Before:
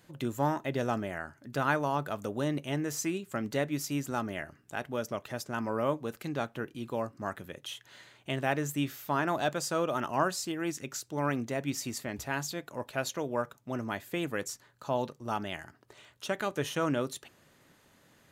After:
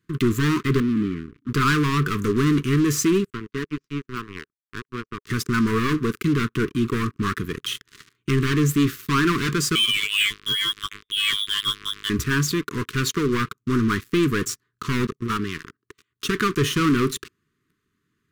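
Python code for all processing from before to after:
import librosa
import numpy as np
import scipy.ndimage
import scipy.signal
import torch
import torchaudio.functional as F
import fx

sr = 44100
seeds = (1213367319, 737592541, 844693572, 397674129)

y = fx.chain(x, sr, fx.formant_cascade(vowel='i'),
    fx.sustainer(db_per_s=49.0), at=(0.8, 1.49))
y = fx.chain(y, sr, fx.highpass(hz=170.0, slope=6),
    fx.power_curve(exponent=2.0),
    fx.air_absorb(metres=190.0), at=(3.3, 5.27))
y = fx.chain(y, sr, fx.robotise(hz=102.0),
    fx.freq_invert(carrier_hz=3600), at=(9.75, 12.1))
y = fx.chain(y, sr, fx.highpass(hz=60.0, slope=6),
    fx.level_steps(step_db=11), at=(15.05, 16.24))
y = fx.high_shelf(y, sr, hz=2400.0, db=-10.0)
y = fx.leveller(y, sr, passes=5)
y = scipy.signal.sosfilt(scipy.signal.ellip(3, 1.0, 40, [420.0, 1100.0], 'bandstop', fs=sr, output='sos'), y)
y = y * 10.0 ** (2.0 / 20.0)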